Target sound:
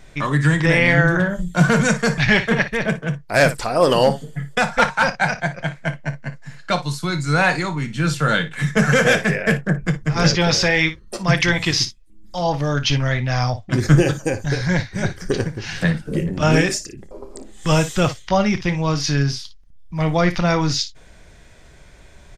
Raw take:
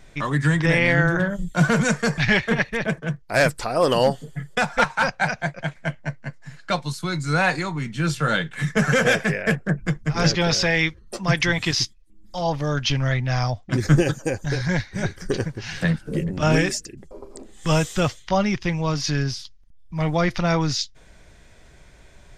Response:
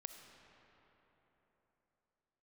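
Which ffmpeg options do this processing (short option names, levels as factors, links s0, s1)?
-af "aecho=1:1:28|57:0.178|0.211,volume=1.41"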